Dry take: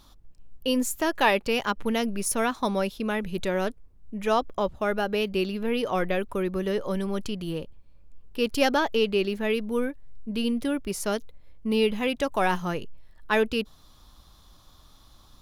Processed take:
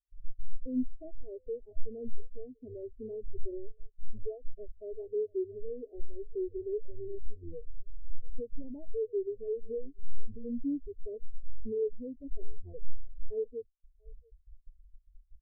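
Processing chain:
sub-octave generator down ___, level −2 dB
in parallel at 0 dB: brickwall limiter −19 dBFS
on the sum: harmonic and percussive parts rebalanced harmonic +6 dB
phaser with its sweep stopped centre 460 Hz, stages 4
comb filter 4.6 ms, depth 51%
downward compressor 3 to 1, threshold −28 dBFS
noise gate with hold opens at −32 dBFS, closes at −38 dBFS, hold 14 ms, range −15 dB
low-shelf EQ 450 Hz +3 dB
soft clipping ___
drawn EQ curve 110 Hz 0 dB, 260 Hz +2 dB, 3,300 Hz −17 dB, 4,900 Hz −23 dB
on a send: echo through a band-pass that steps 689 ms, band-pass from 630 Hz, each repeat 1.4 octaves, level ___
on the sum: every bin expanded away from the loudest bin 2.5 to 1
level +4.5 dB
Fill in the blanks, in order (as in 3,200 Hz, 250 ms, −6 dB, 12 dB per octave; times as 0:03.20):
1 octave, −22.5 dBFS, −8.5 dB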